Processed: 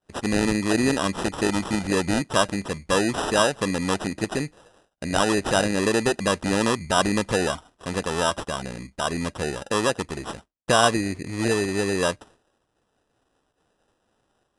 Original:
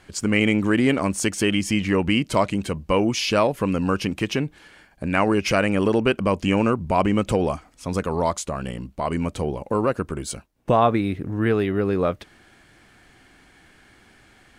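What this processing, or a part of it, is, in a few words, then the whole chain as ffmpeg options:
crushed at another speed: -af "asetrate=88200,aresample=44100,acrusher=samples=10:mix=1:aa=0.000001,asetrate=22050,aresample=44100,lowshelf=frequency=260:gain=-6,agate=range=-33dB:threshold=-44dB:ratio=3:detection=peak"

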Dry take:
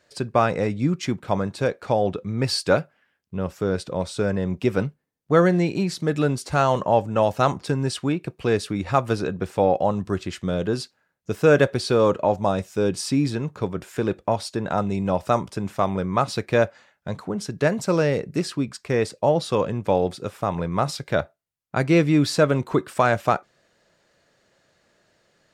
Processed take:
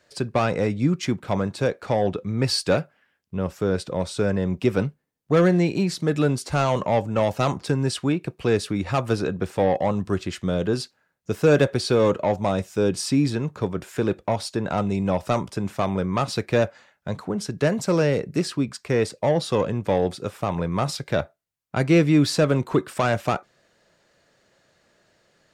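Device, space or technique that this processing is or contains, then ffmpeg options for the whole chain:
one-band saturation: -filter_complex "[0:a]acrossover=split=440|2700[link_01][link_02][link_03];[link_02]asoftclip=type=tanh:threshold=-20dB[link_04];[link_01][link_04][link_03]amix=inputs=3:normalize=0,volume=1dB"

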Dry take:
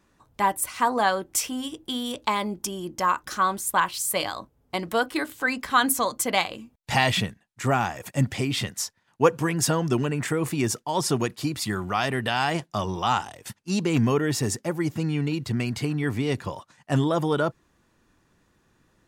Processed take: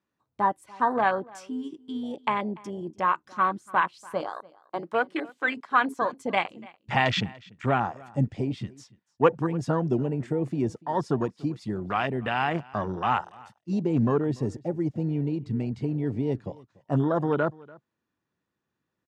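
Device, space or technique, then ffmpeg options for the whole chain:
over-cleaned archive recording: -filter_complex "[0:a]asettb=1/sr,asplit=3[link_01][link_02][link_03];[link_01]atrim=end=4.384[link_04];[link_02]atrim=start=4.38:end=6.02,asetpts=PTS-STARTPTS,afade=type=in:duration=0.004:curve=qsin,afade=type=out:start_time=1.636:duration=0.004:curve=qsin,highpass=270[link_05];[link_03]atrim=start=6.016[link_06];[link_04][link_05]acrossfade=duration=0.004:curve1=hsin:curve2=qsin[link_07];[link_07][link_06]acrossfade=duration=0.004:curve1=qsin:curve2=hsin,highpass=100,lowpass=5600,afwtdn=0.0398,aecho=1:1:290:0.0708,volume=-1dB"

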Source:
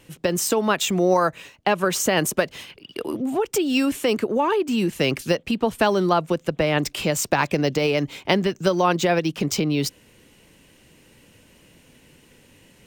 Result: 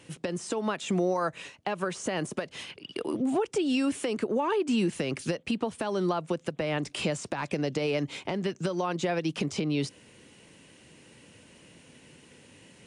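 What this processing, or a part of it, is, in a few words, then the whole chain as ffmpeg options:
podcast mastering chain: -af "highpass=90,deesser=0.7,acompressor=threshold=-23dB:ratio=3,alimiter=limit=-17.5dB:level=0:latency=1:release=299" -ar 24000 -c:a libmp3lame -b:a 96k

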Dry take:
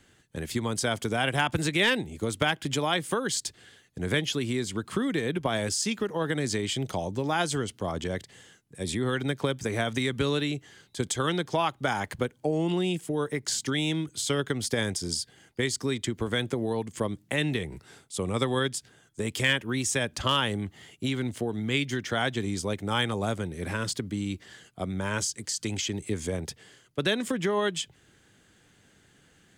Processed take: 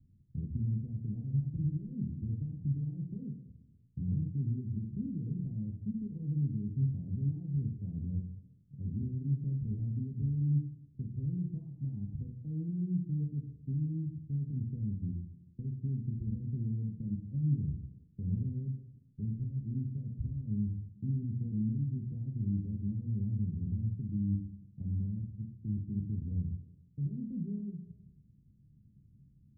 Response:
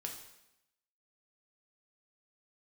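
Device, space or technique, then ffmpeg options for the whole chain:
club heard from the street: -filter_complex "[0:a]alimiter=limit=-23.5dB:level=0:latency=1,lowpass=frequency=180:width=0.5412,lowpass=frequency=180:width=1.3066[link_01];[1:a]atrim=start_sample=2205[link_02];[link_01][link_02]afir=irnorm=-1:irlink=0,volume=6.5dB"

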